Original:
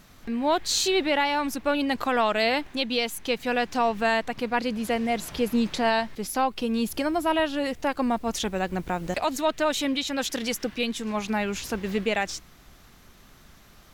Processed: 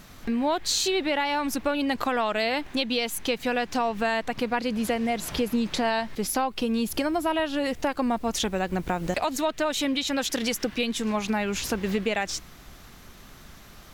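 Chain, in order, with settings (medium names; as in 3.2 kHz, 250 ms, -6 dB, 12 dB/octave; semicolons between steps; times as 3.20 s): compression 4:1, threshold -28 dBFS, peak gain reduction 8.5 dB; trim +5 dB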